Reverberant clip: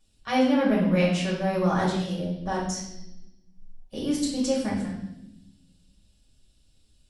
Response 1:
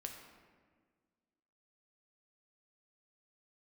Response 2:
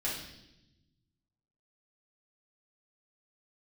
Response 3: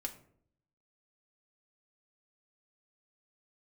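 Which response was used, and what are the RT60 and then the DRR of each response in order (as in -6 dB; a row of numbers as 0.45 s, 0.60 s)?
2; 1.6 s, 0.85 s, 0.60 s; 2.5 dB, -7.0 dB, 2.0 dB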